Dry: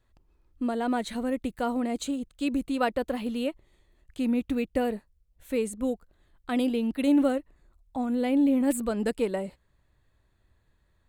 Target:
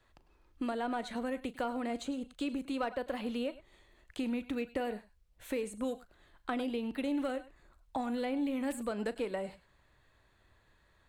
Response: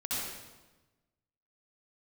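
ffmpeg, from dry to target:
-filter_complex "[0:a]asplit=2[link_01][link_02];[link_02]highpass=frequency=720:poles=1,volume=9dB,asoftclip=type=tanh:threshold=-12.5dB[link_03];[link_01][link_03]amix=inputs=2:normalize=0,lowpass=frequency=4300:poles=1,volume=-6dB,acrossover=split=90|1400[link_04][link_05][link_06];[link_04]acompressor=threshold=-60dB:ratio=4[link_07];[link_05]acompressor=threshold=-38dB:ratio=4[link_08];[link_06]acompressor=threshold=-51dB:ratio=4[link_09];[link_07][link_08][link_09]amix=inputs=3:normalize=0,asplit=2[link_10][link_11];[1:a]atrim=start_sample=2205,atrim=end_sample=3087,adelay=38[link_12];[link_11][link_12]afir=irnorm=-1:irlink=0,volume=-12dB[link_13];[link_10][link_13]amix=inputs=2:normalize=0,volume=3dB"

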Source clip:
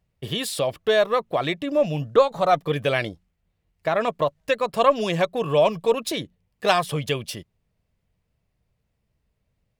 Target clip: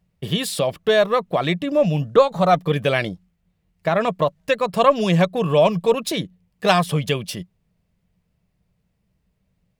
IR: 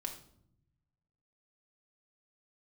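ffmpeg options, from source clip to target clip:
-af "equalizer=frequency=180:width_type=o:width=0.33:gain=11.5,volume=2.5dB"

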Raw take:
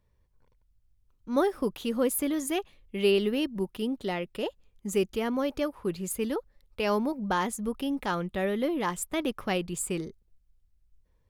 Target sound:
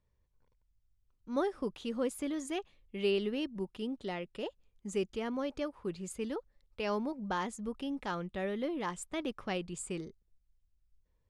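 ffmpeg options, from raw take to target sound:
ffmpeg -i in.wav -af "lowpass=frequency=8700:width=0.5412,lowpass=frequency=8700:width=1.3066,volume=-7dB" out.wav

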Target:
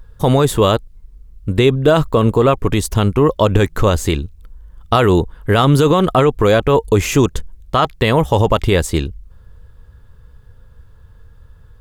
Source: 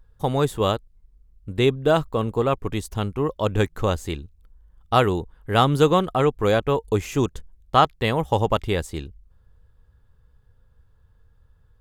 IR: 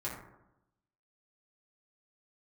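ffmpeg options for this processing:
-af "bandreject=frequency=790:width=12,alimiter=level_in=15.5dB:limit=-1dB:release=50:level=0:latency=1,volume=-1.5dB"

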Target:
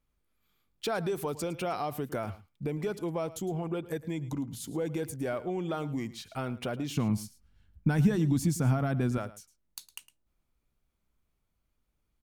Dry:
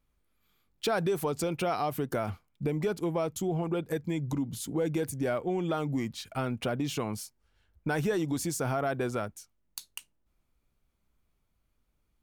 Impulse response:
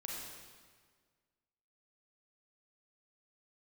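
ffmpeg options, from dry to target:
-filter_complex "[0:a]asettb=1/sr,asplit=3[link_01][link_02][link_03];[link_01]atrim=end=6.964[link_04];[link_02]atrim=start=6.96:end=9.18,asetpts=PTS-STARTPTS,afade=type=in:duration=0.004:curve=qsin,afade=type=out:start_time=2.216:duration=0.004:curve=qsin,lowshelf=frequency=300:width_type=q:width=1.5:gain=10[link_05];[link_03]atrim=start=9.176[link_06];[link_04][link_05]acrossfade=duration=0.004:curve1=hsin:curve2=qsin[link_07];[link_07][link_06]acrossfade=duration=0.004:curve1=qsin:curve2=hsin,aecho=1:1:109:0.141,volume=-3dB"

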